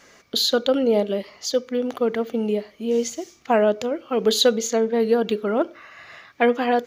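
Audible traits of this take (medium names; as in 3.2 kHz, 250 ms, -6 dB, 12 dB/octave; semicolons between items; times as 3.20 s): noise floor -53 dBFS; spectral tilt -3.5 dB/octave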